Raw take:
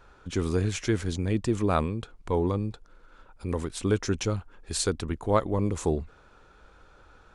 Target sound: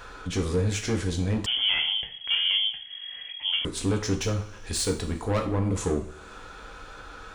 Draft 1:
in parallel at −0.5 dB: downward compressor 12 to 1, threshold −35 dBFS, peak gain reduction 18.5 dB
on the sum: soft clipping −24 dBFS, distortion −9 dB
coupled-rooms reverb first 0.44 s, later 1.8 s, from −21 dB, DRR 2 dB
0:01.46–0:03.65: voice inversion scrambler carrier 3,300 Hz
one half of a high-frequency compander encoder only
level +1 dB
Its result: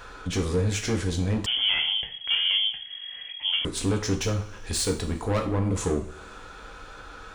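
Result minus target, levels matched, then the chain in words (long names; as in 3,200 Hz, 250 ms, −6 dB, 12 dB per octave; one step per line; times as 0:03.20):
downward compressor: peak gain reduction −10.5 dB
in parallel at −0.5 dB: downward compressor 12 to 1, threshold −46.5 dBFS, peak gain reduction 29 dB
on the sum: soft clipping −24 dBFS, distortion −10 dB
coupled-rooms reverb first 0.44 s, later 1.8 s, from −21 dB, DRR 2 dB
0:01.46–0:03.65: voice inversion scrambler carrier 3,300 Hz
one half of a high-frequency compander encoder only
level +1 dB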